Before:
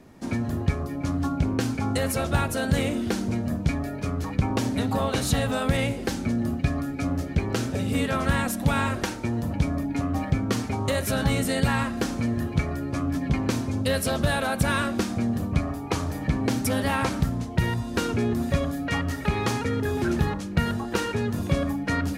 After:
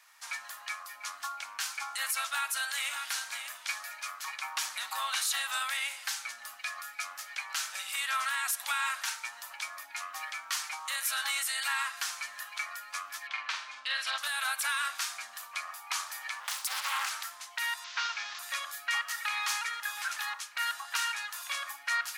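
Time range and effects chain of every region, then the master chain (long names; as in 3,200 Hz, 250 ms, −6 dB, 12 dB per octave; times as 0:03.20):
0:02.26–0:04.95: high-pass filter 160 Hz 24 dB per octave + single-tap delay 589 ms −10 dB
0:13.27–0:14.18: Chebyshev band-pass filter 240–3,400 Hz + double-tracking delay 45 ms −6 dB
0:16.40–0:17.11: high-pass filter 290 Hz 24 dB per octave + parametric band 1,800 Hz −7.5 dB 0.4 octaves + highs frequency-modulated by the lows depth 0.82 ms
0:17.84–0:18.39: linear delta modulator 32 kbit/s, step −36 dBFS + low-shelf EQ 71 Hz +11.5 dB
whole clip: inverse Chebyshev high-pass filter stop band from 410 Hz, stop band 50 dB; spectral tilt +1.5 dB per octave; brickwall limiter −20.5 dBFS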